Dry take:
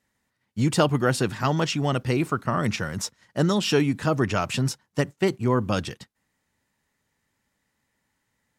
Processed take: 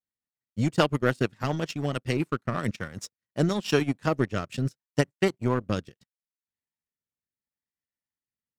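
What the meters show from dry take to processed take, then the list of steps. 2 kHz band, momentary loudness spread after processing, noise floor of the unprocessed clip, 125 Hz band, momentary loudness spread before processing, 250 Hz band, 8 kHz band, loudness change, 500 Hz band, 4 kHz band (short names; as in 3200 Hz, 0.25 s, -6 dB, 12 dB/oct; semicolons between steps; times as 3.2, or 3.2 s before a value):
-2.5 dB, 9 LU, -77 dBFS, -3.5 dB, 7 LU, -3.5 dB, -9.0 dB, -3.5 dB, -2.5 dB, -5.5 dB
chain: transient shaper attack +2 dB, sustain -10 dB; power-law curve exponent 1.4; rotary speaker horn 7 Hz, later 0.75 Hz, at 2.2; gain +2 dB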